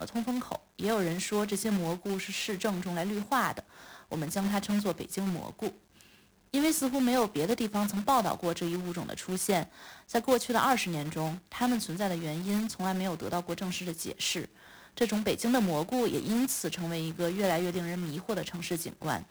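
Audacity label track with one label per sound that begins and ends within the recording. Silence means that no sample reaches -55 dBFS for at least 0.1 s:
0.790000	5.780000	sound
5.950000	6.240000	sound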